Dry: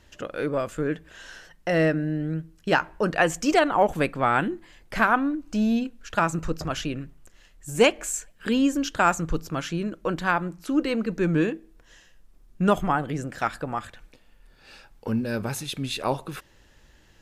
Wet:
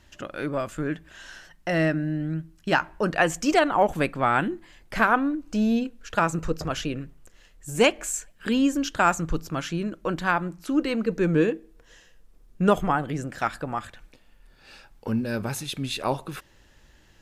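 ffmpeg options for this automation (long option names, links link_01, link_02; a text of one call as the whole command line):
ffmpeg -i in.wav -af "asetnsamples=nb_out_samples=441:pad=0,asendcmd='2.97 equalizer g -3;5 equalizer g 4.5;7.79 equalizer g -2.5;11.06 equalizer g 7;12.9 equalizer g -2',equalizer=frequency=470:width_type=o:width=0.26:gain=-10" out.wav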